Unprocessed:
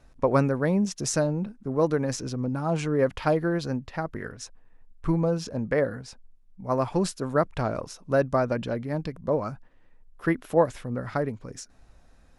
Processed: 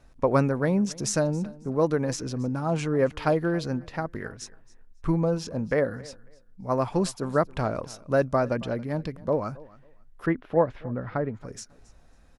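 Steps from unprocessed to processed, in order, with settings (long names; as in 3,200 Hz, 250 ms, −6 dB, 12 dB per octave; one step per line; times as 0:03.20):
0:10.26–0:11.35: high-frequency loss of the air 330 metres
on a send: repeating echo 273 ms, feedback 20%, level −21.5 dB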